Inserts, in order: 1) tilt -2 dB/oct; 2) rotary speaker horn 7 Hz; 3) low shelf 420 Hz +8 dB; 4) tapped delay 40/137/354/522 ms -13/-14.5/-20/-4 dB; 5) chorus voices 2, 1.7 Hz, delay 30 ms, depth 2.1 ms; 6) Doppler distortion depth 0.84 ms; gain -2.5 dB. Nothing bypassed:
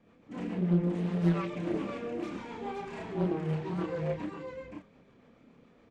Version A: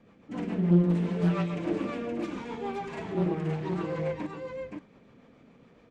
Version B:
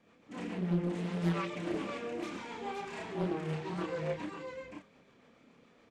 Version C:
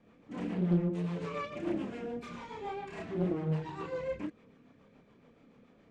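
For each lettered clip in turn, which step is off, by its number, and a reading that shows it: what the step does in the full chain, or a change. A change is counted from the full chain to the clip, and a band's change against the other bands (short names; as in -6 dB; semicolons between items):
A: 5, loudness change +3.0 LU; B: 1, 4 kHz band +6.0 dB; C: 4, momentary loudness spread change -2 LU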